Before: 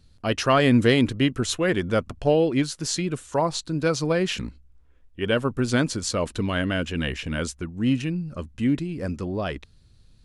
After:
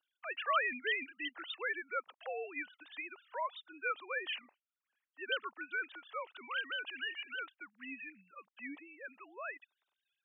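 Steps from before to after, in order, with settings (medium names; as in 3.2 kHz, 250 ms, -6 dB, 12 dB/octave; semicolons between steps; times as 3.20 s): formants replaced by sine waves; high-pass 1.4 kHz 12 dB/octave; trim -3.5 dB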